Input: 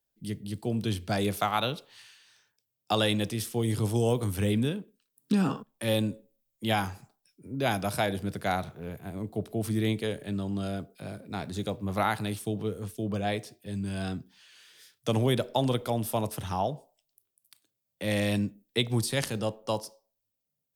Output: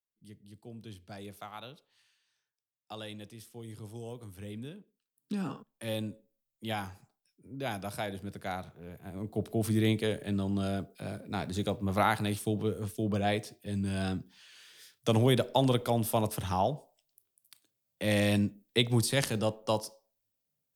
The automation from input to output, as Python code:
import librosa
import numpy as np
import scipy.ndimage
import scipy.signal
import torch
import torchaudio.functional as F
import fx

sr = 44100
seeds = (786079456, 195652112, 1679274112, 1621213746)

y = fx.gain(x, sr, db=fx.line((4.35, -17.0), (5.57, -8.0), (8.88, -8.0), (9.46, 0.5)))